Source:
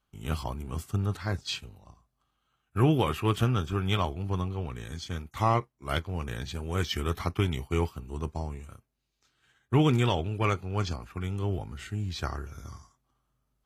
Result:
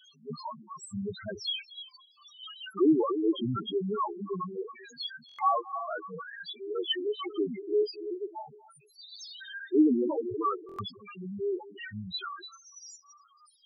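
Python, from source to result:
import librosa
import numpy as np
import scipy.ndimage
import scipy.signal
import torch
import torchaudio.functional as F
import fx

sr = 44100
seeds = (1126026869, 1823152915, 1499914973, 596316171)

p1 = x + 0.5 * 10.0 ** (-22.0 / 20.0) * np.diff(np.sign(x), prepend=np.sign(x[:1]))
p2 = scipy.signal.sosfilt(scipy.signal.butter(2, 5000.0, 'lowpass', fs=sr, output='sos'), p1)
p3 = fx.echo_feedback(p2, sr, ms=293, feedback_pct=32, wet_db=-11)
p4 = 10.0 ** (-27.0 / 20.0) * np.tanh(p3 / 10.0 ** (-27.0 / 20.0))
p5 = p3 + F.gain(torch.from_numpy(p4), -9.5).numpy()
p6 = fx.noise_reduce_blind(p5, sr, reduce_db=11)
p7 = scipy.signal.sosfilt(scipy.signal.butter(2, 240.0, 'highpass', fs=sr, output='sos'), p6)
p8 = p7 + 10.0 ** (-18.0 / 20.0) * np.pad(p7, (int(230 * sr / 1000.0), 0))[:len(p7)]
p9 = fx.spec_topn(p8, sr, count=2)
p10 = fx.buffer_glitch(p9, sr, at_s=(5.27, 10.67), block=1024, repeats=4)
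y = F.gain(torch.from_numpy(p10), 7.0).numpy()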